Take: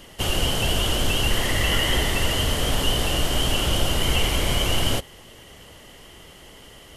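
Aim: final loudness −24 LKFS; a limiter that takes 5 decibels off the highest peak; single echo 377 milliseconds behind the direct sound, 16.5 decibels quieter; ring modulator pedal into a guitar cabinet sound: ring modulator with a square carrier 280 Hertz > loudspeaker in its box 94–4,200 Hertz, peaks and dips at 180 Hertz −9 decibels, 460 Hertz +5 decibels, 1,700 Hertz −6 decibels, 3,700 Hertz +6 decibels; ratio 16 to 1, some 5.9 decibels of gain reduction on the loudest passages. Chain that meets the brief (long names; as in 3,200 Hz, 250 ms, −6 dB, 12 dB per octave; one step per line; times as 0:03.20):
downward compressor 16 to 1, threshold −21 dBFS
brickwall limiter −18.5 dBFS
single-tap delay 377 ms −16.5 dB
ring modulator with a square carrier 280 Hz
loudspeaker in its box 94–4,200 Hz, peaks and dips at 180 Hz −9 dB, 460 Hz +5 dB, 1,700 Hz −6 dB, 3,700 Hz +6 dB
level +3 dB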